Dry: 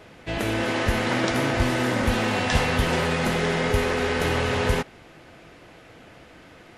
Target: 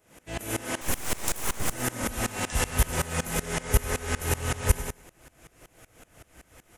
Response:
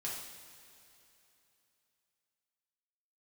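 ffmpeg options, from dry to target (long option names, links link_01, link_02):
-filter_complex "[0:a]asubboost=boost=3:cutoff=99,asettb=1/sr,asplit=3[link_01][link_02][link_03];[link_01]atrim=end=0.814[link_04];[link_02]atrim=start=0.81:end=1.73,asetpts=PTS-STARTPTS,afade=type=in:duration=0.004:curve=qsin,afade=type=out:start_time=0.916:duration=0.004:curve=qsin,aeval=exprs='abs(val(0))':channel_layout=same[link_05];[link_03]atrim=start=1.726[link_06];[link_04][link_05]acrossfade=duration=0.004:curve1=hsin:curve2=qsin[link_07];[link_07][link_06]acrossfade=duration=0.004:curve1=qsin:curve2=hsin,aecho=1:1:98|196|294:0.447|0.107|0.0257,aexciter=amount=7.1:drive=4.6:freq=6200,aeval=exprs='val(0)*pow(10,-22*if(lt(mod(-5.3*n/s,1),2*abs(-5.3)/1000),1-mod(-5.3*n/s,1)/(2*abs(-5.3)/1000),(mod(-5.3*n/s,1)-2*abs(-5.3)/1000)/(1-2*abs(-5.3)/1000))/20)':channel_layout=same,volume=-1.5dB"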